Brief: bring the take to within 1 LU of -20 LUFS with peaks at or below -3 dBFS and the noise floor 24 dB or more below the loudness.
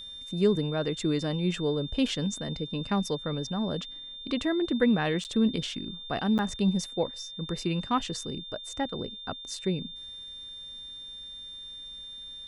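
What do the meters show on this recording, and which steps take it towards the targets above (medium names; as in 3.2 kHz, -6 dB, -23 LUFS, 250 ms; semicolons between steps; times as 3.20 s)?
dropouts 2; longest dropout 9.0 ms; steady tone 3.6 kHz; tone level -40 dBFS; loudness -30.5 LUFS; peak level -12.0 dBFS; loudness target -20.0 LUFS
-> interpolate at 5.24/6.38 s, 9 ms; band-stop 3.6 kHz, Q 30; trim +10.5 dB; peak limiter -3 dBFS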